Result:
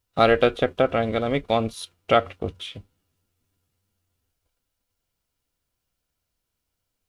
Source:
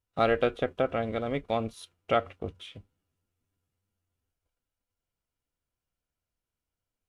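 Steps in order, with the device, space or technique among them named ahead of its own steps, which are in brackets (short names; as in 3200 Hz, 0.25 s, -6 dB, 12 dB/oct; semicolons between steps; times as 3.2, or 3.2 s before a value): presence and air boost (bell 4300 Hz +4 dB 0.96 oct; high shelf 9400 Hz +5.5 dB); gain +7 dB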